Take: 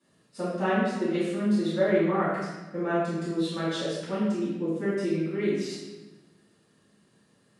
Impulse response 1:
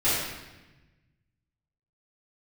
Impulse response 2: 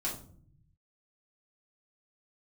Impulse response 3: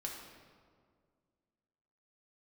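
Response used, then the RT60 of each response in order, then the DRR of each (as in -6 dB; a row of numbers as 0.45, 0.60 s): 1; 1.1, 0.55, 2.0 s; -13.5, -6.5, -1.0 dB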